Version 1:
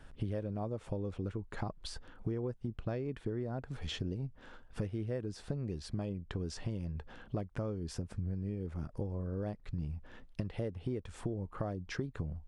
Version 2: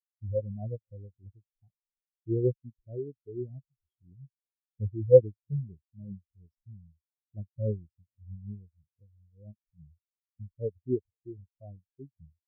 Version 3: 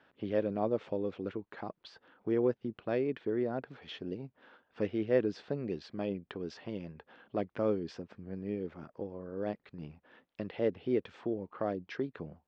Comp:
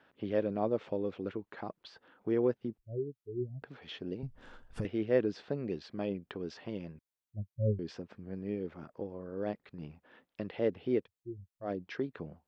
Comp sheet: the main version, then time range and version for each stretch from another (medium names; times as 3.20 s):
3
2.78–3.62 s: from 2
4.23–4.85 s: from 1
6.99–7.79 s: from 2
11.03–11.66 s: from 2, crossfade 0.10 s